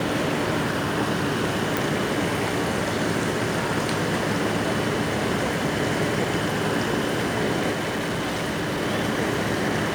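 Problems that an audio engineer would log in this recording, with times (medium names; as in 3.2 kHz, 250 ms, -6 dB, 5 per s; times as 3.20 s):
1.77 s: pop
7.71–8.83 s: clipped -22.5 dBFS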